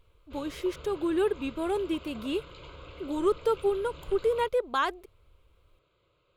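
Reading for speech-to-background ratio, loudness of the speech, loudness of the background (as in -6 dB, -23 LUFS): 17.5 dB, -30.0 LUFS, -47.5 LUFS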